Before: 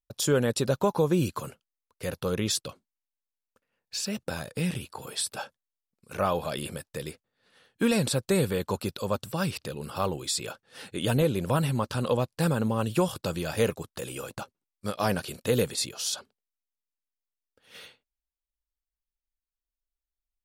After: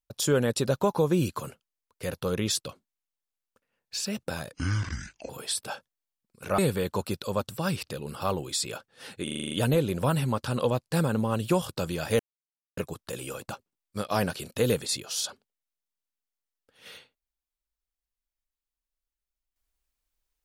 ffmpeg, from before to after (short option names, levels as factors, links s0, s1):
-filter_complex "[0:a]asplit=12[s0][s1][s2][s3][s4][s5][s6][s7][s8][s9][s10][s11];[s0]atrim=end=4.534[s12];[s1]atrim=start=4.53:end=4.98,asetpts=PTS-STARTPTS,asetrate=26019,aresample=44100[s13];[s2]atrim=start=4.976:end=6.272[s14];[s3]atrim=start=8.328:end=11.022[s15];[s4]atrim=start=10.978:end=11.022[s16];[s5]atrim=start=10.978:end=11.022[s17];[s6]atrim=start=10.978:end=11.022[s18];[s7]atrim=start=10.978:end=11.022[s19];[s8]atrim=start=10.978:end=11.022[s20];[s9]atrim=start=10.978:end=11.022[s21];[s10]atrim=start=10.978:end=13.66,asetpts=PTS-STARTPTS,afade=t=out:st=2.678:d=0.004:c=hsin,apad=pad_dur=0.58[s22];[s11]atrim=start=13.66,asetpts=PTS-STARTPTS,afade=t=in:d=0.004:c=hsin[s23];[s12][s13]acrossfade=d=0.004:c1=hsin:c2=hsin[s24];[s24][s14]acrossfade=d=0.004:c1=hsin:c2=hsin[s25];[s25][s15]acrossfade=d=0.004:c1=hsin:c2=hsin[s26];[s26][s16]acrossfade=d=0.004:c1=hsin:c2=hsin[s27];[s27][s17]acrossfade=d=0.004:c1=hsin:c2=hsin[s28];[s28][s18]acrossfade=d=0.004:c1=hsin:c2=hsin[s29];[s29][s19]acrossfade=d=0.004:c1=hsin:c2=hsin[s30];[s30][s20]acrossfade=d=0.004:c1=hsin:c2=hsin[s31];[s31][s21]acrossfade=d=0.004:c1=hsin:c2=hsin[s32];[s22][s23]concat=n=2:v=0:a=1[s33];[s32][s33]acrossfade=d=0.004:c1=hsin:c2=hsin"